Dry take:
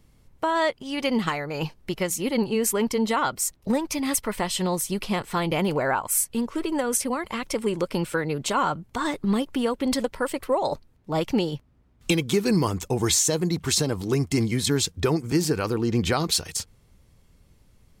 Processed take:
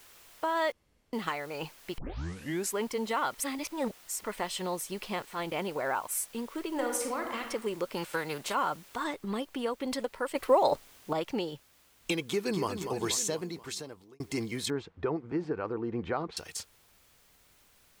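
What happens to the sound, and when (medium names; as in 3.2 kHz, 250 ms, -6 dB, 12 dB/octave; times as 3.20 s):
0.72–1.13 s: room tone
1.98 s: tape start 0.75 s
3.34–4.24 s: reverse
5.25–5.96 s: transient shaper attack -7 dB, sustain -11 dB
6.68–7.41 s: reverb throw, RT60 0.86 s, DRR 2.5 dB
7.96–8.53 s: formants flattened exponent 0.6
9.04 s: noise floor step -47 dB -55 dB
10.35–11.13 s: gain +7 dB
12.23–12.69 s: echo throw 240 ms, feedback 65%, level -8 dB
13.21–14.20 s: fade out
14.70–16.37 s: low-pass 1.5 kHz
whole clip: tone controls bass -10 dB, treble -4 dB; trim -6 dB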